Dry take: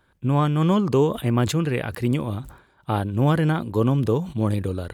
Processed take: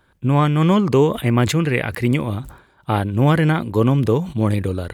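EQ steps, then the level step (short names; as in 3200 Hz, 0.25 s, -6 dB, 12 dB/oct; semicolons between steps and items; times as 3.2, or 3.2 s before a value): dynamic EQ 2100 Hz, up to +8 dB, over -50 dBFS, Q 2.9; +4.0 dB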